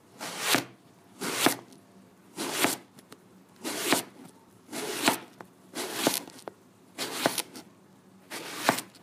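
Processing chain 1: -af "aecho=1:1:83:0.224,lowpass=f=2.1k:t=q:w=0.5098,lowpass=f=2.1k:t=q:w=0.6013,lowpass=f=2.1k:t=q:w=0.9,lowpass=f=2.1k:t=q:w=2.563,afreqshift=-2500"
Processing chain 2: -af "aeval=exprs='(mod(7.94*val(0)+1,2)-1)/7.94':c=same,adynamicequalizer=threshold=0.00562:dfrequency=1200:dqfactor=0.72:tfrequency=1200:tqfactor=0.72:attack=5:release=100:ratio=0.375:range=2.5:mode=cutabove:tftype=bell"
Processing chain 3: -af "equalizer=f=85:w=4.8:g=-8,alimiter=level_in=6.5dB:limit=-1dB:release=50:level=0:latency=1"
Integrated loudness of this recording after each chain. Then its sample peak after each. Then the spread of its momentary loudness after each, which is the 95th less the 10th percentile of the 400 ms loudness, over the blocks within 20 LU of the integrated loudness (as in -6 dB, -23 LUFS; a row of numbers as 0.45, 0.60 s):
-31.5, -31.5, -24.5 LUFS; -6.0, -16.5, -1.0 dBFS; 19, 18, 19 LU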